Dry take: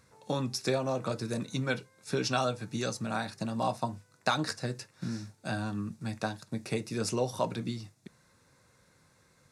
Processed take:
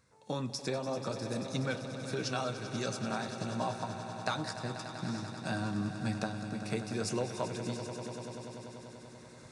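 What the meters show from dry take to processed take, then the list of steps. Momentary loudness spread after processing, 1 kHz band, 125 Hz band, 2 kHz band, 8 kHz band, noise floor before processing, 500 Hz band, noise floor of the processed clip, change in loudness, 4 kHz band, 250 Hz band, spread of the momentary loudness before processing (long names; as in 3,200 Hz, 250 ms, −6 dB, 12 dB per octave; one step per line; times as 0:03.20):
9 LU, −3.5 dB, −2.0 dB, −3.0 dB, −2.5 dB, −66 dBFS, −3.0 dB, −52 dBFS, −3.0 dB, −3.0 dB, −2.0 dB, 8 LU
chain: camcorder AGC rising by 7.2 dB per second
on a send: echo that builds up and dies away 97 ms, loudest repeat 5, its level −13.5 dB
on the sum: downsampling to 22,050 Hz
level −6.5 dB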